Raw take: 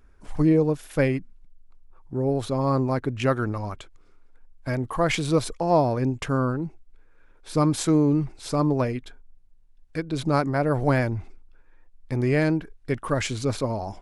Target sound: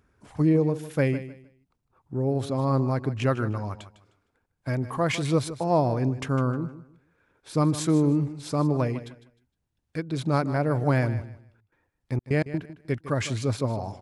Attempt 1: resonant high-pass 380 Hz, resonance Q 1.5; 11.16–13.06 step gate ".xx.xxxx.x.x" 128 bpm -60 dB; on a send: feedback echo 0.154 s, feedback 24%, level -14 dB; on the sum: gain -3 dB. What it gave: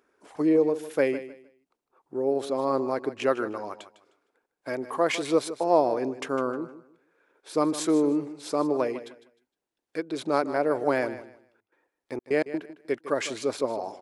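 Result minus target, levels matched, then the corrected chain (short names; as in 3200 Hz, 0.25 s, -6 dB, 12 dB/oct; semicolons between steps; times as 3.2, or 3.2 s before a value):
125 Hz band -18.5 dB
resonant high-pass 100 Hz, resonance Q 1.5; 11.16–13.06 step gate ".xx.xxxx.x.x" 128 bpm -60 dB; on a send: feedback echo 0.154 s, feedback 24%, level -14 dB; on the sum: gain -3 dB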